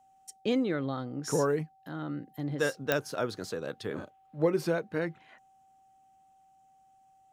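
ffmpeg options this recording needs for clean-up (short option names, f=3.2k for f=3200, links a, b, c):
-af "adeclick=t=4,bandreject=f=770:w=30"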